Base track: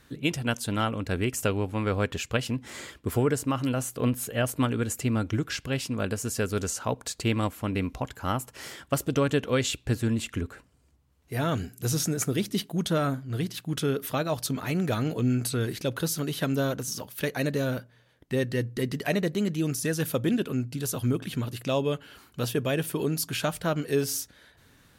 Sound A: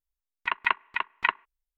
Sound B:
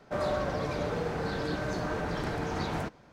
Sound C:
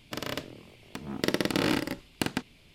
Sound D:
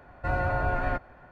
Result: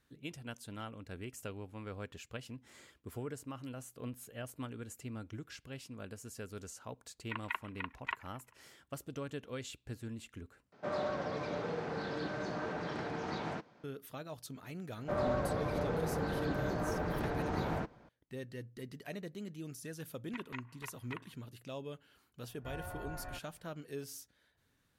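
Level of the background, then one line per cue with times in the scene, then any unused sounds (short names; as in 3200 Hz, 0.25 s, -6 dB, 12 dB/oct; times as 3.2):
base track -17.5 dB
6.84 add A -14 dB + warbling echo 0.133 s, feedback 59%, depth 211 cents, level -21 dB
10.72 replace with B -5.5 dB + BPF 140–5800 Hz
14.97 add B -2.5 dB + high shelf 2900 Hz -10.5 dB
19.88 add A -6 dB + compressor 4:1, threshold -38 dBFS
22.41 add D -18 dB
not used: C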